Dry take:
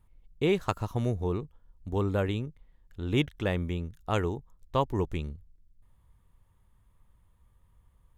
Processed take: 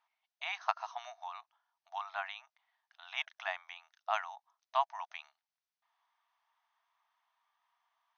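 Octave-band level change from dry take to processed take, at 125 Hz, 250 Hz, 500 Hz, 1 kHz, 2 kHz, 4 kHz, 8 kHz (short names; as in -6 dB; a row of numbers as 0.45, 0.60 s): under -40 dB, under -40 dB, -15.5 dB, 0.0 dB, -1.0 dB, -4.0 dB, n/a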